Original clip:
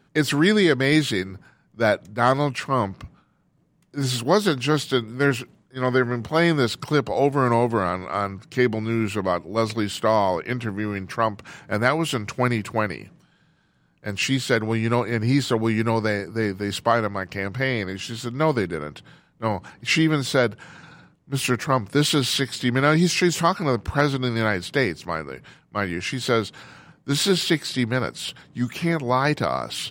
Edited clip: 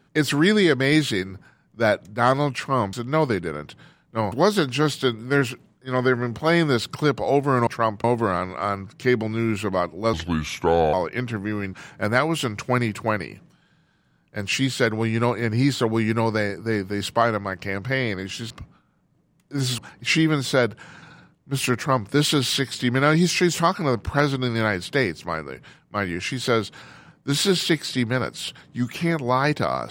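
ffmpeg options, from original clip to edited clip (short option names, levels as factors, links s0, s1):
-filter_complex "[0:a]asplit=10[s0][s1][s2][s3][s4][s5][s6][s7][s8][s9];[s0]atrim=end=2.932[s10];[s1]atrim=start=18.198:end=19.592[s11];[s2]atrim=start=4.208:end=7.562[s12];[s3]atrim=start=11.058:end=11.432[s13];[s4]atrim=start=7.558:end=9.654[s14];[s5]atrim=start=9.65:end=10.26,asetpts=PTS-STARTPTS,asetrate=33516,aresample=44100,atrim=end_sample=35396,asetpts=PTS-STARTPTS[s15];[s6]atrim=start=10.256:end=11.062[s16];[s7]atrim=start=11.428:end=18.202[s17];[s8]atrim=start=2.928:end=4.212[s18];[s9]atrim=start=19.588[s19];[s10][s11]acrossfade=d=0.004:c1=hsin:c2=hsin[s20];[s20][s12]acrossfade=d=0.004:c1=hsin:c2=hsin[s21];[s21][s13]acrossfade=d=0.004:c1=hsin:c2=hsin[s22];[s22][s14]acrossfade=d=0.004:c1=hsin:c2=hsin[s23];[s23][s15]acrossfade=d=0.004:c1=hsin:c2=hsin[s24];[s24][s16]acrossfade=d=0.004:c1=hsin:c2=hsin[s25];[s25][s17]acrossfade=d=0.004:c1=hsin:c2=hsin[s26];[s26][s18]acrossfade=d=0.004:c1=hsin:c2=hsin[s27];[s27][s19]acrossfade=d=0.004:c1=hsin:c2=hsin"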